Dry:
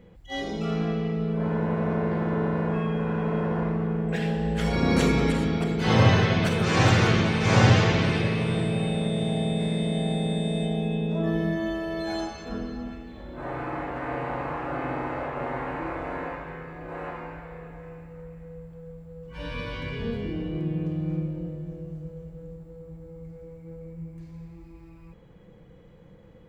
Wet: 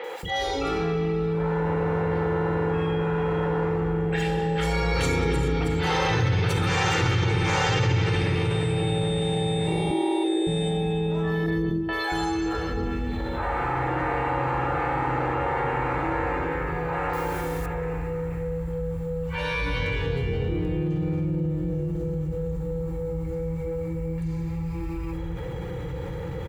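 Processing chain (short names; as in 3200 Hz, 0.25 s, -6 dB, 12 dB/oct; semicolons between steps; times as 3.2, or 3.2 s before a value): 17.09–17.62 level-crossing sampler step -48.5 dBFS; HPF 50 Hz; bell 390 Hz -4 dB 1.4 oct; 9.67–10.24 frequency shift +160 Hz; 11.46–11.89 gate -28 dBFS, range -25 dB; three bands offset in time mids, highs, lows 40/230 ms, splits 470/4100 Hz; reverb RT60 0.30 s, pre-delay 3 ms, DRR 18 dB; fast leveller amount 70%; gain -6.5 dB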